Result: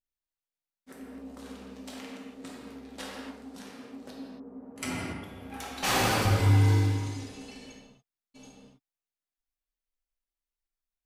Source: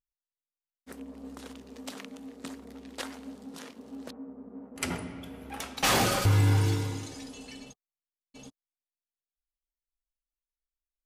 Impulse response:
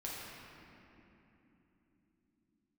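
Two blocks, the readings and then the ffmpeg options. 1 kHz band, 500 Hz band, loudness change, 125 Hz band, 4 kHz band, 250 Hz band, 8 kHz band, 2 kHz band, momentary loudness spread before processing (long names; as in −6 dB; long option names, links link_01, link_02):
+0.5 dB, 0.0 dB, +1.0 dB, +1.5 dB, −1.5 dB, +0.5 dB, −2.5 dB, +0.5 dB, 22 LU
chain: -filter_complex "[1:a]atrim=start_sample=2205,afade=type=out:start_time=0.34:duration=0.01,atrim=end_sample=15435[link_01];[0:a][link_01]afir=irnorm=-1:irlink=0"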